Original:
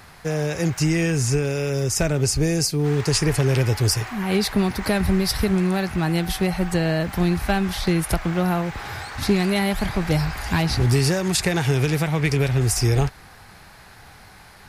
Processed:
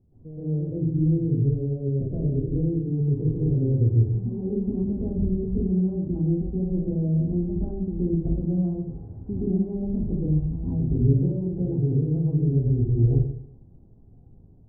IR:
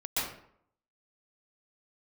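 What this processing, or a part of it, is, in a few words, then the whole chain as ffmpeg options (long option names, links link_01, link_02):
next room: -filter_complex "[0:a]lowpass=frequency=370:width=0.5412,lowpass=frequency=370:width=1.3066[link_01];[1:a]atrim=start_sample=2205[link_02];[link_01][link_02]afir=irnorm=-1:irlink=0,volume=-7.5dB"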